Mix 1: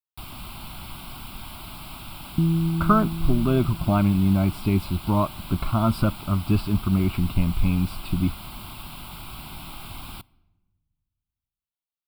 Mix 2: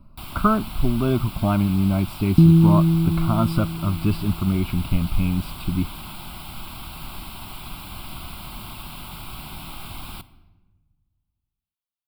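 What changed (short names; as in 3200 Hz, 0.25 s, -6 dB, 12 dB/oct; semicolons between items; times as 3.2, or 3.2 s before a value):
speech: entry -2.45 s; first sound: send +10.5 dB; second sound +9.0 dB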